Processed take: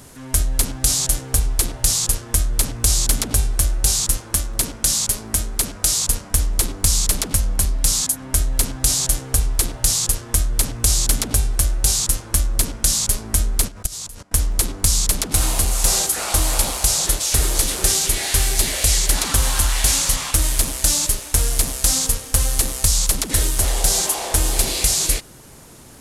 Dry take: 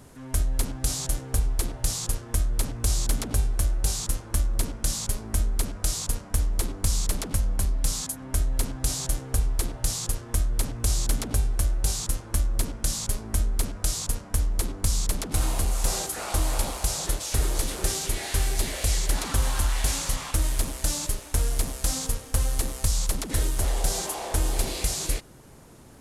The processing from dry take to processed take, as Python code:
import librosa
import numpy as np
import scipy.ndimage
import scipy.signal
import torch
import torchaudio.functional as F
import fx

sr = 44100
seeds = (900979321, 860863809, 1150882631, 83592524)

y = fx.low_shelf(x, sr, hz=70.0, db=-9.0, at=(4.18, 6.03))
y = fx.level_steps(y, sr, step_db=21, at=(13.67, 14.32), fade=0.02)
y = fx.high_shelf(y, sr, hz=2100.0, db=8.0)
y = F.gain(torch.from_numpy(y), 4.5).numpy()